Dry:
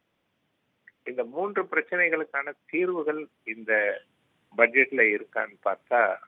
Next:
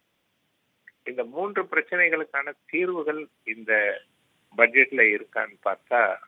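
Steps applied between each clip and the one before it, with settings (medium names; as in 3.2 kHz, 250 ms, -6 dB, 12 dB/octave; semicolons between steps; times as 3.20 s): treble shelf 3 kHz +10 dB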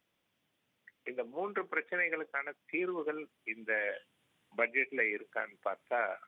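compression 2:1, threshold -24 dBFS, peak gain reduction 7.5 dB; trim -7.5 dB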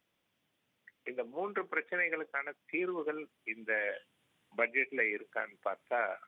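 no audible change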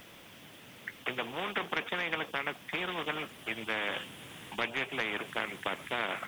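spectrum-flattening compressor 4:1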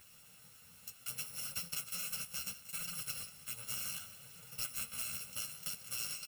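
bit-reversed sample order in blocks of 128 samples; chorus voices 2, 0.68 Hz, delay 11 ms, depth 4.7 ms; delay 183 ms -15.5 dB; trim -3.5 dB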